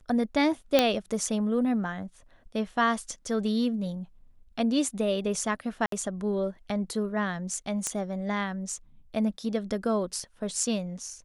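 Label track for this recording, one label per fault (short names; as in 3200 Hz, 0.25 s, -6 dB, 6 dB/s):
0.790000	0.790000	pop -6 dBFS
5.860000	5.920000	gap 63 ms
7.870000	7.870000	pop -15 dBFS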